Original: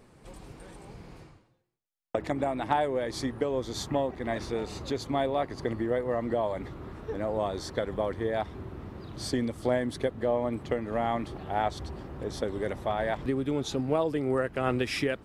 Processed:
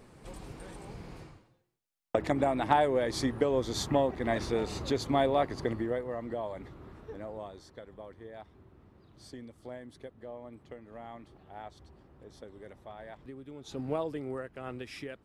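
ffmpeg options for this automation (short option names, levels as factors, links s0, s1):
-af "volume=4.73,afade=t=out:st=5.43:d=0.68:silence=0.354813,afade=t=out:st=6.96:d=0.7:silence=0.334965,afade=t=in:st=13.62:d=0.25:silence=0.251189,afade=t=out:st=13.87:d=0.63:silence=0.398107"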